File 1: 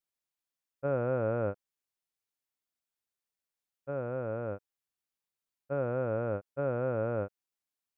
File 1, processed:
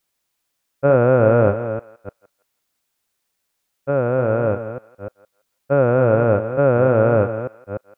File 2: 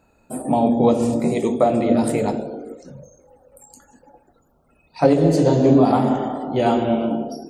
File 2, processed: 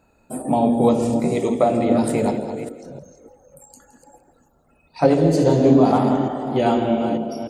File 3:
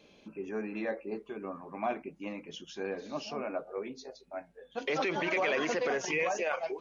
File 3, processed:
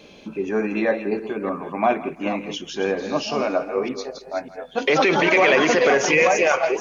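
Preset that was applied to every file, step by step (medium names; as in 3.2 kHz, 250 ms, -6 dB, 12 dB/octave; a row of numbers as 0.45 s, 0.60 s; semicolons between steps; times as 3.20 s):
chunks repeated in reverse 299 ms, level -10 dB; thinning echo 167 ms, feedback 27%, high-pass 780 Hz, level -15 dB; peak normalisation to -3 dBFS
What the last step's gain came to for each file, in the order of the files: +16.5 dB, -0.5 dB, +13.5 dB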